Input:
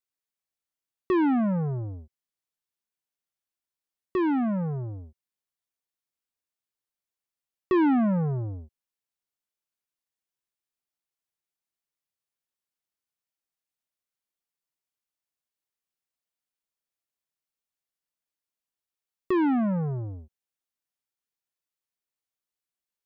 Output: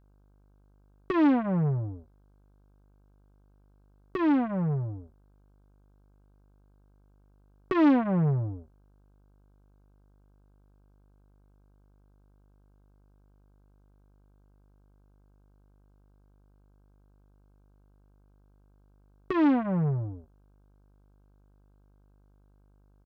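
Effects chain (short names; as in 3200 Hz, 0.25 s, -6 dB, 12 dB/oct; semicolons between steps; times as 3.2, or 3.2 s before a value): comb 6.9 ms, depth 63%; buzz 50 Hz, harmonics 32, -60 dBFS -7 dB/oct; Doppler distortion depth 0.33 ms; gain -1.5 dB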